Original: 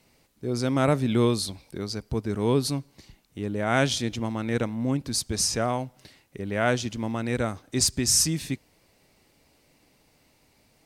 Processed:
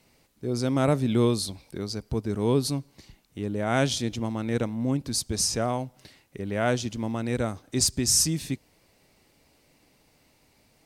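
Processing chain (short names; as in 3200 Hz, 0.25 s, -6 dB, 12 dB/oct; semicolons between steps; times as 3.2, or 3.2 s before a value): dynamic EQ 1800 Hz, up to -4 dB, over -43 dBFS, Q 0.78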